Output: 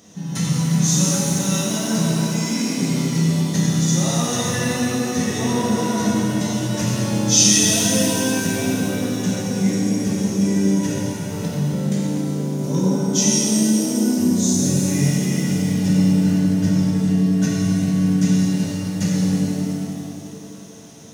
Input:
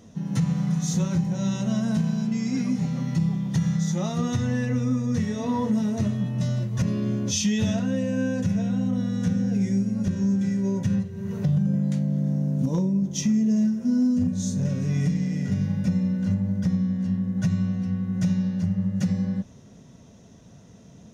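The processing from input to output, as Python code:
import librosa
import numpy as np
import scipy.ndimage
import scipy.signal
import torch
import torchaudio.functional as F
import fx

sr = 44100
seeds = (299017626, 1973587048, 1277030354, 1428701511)

y = fx.highpass(x, sr, hz=240.0, slope=6)
y = fx.high_shelf(y, sr, hz=3400.0, db=10.0)
y = fx.rev_shimmer(y, sr, seeds[0], rt60_s=3.0, semitones=7, shimmer_db=-8, drr_db=-6.0)
y = F.gain(torch.from_numpy(y), 1.0).numpy()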